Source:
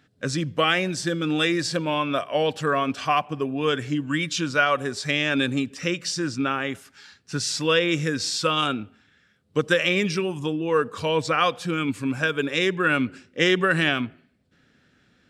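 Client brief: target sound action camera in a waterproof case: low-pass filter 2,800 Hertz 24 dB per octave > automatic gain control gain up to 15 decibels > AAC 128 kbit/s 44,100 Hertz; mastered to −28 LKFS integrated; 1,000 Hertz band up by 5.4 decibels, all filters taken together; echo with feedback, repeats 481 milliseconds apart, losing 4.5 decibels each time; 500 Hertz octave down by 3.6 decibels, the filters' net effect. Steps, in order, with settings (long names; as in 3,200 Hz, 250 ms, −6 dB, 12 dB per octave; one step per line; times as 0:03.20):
low-pass filter 2,800 Hz 24 dB per octave
parametric band 500 Hz −6.5 dB
parametric band 1,000 Hz +8.5 dB
repeating echo 481 ms, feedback 60%, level −4.5 dB
automatic gain control gain up to 15 dB
level −7 dB
AAC 128 kbit/s 44,100 Hz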